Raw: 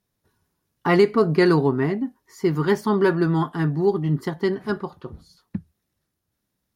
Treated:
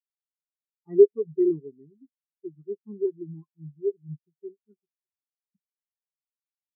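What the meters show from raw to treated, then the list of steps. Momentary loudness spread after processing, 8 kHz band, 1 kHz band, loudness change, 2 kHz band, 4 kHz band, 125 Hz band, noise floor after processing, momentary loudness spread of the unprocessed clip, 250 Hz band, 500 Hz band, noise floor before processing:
24 LU, can't be measured, below −40 dB, −3.0 dB, below −40 dB, below −40 dB, −20.0 dB, below −85 dBFS, 18 LU, −10.5 dB, −3.5 dB, −79 dBFS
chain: every bin expanded away from the loudest bin 4 to 1

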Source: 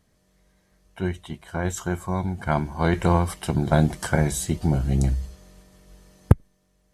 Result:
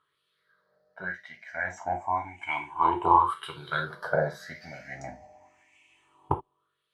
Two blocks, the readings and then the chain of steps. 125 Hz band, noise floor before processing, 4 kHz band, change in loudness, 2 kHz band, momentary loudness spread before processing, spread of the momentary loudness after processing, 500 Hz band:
−18.5 dB, −66 dBFS, −5.0 dB, −4.5 dB, +0.5 dB, 9 LU, 19 LU, −5.5 dB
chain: rippled gain that drifts along the octave scale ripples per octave 0.64, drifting +0.3 Hz, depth 18 dB
reverb whose tail is shaped and stops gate 100 ms falling, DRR 3 dB
LFO wah 0.9 Hz 750–2,500 Hz, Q 3.4
level +3 dB

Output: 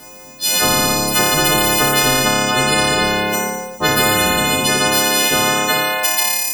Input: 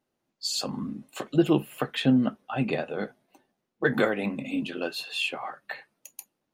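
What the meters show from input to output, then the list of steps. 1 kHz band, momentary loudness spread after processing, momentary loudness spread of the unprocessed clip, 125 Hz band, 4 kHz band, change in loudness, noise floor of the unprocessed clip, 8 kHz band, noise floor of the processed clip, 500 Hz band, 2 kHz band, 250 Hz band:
+20.0 dB, 4 LU, 17 LU, +9.5 dB, +19.0 dB, +14.0 dB, −81 dBFS, can't be measured, −38 dBFS, +11.0 dB, +17.5 dB, +5.0 dB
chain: every partial snapped to a pitch grid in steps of 3 semitones
flutter between parallel walls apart 4.9 metres, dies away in 0.97 s
every bin compressed towards the loudest bin 10 to 1
level +7 dB

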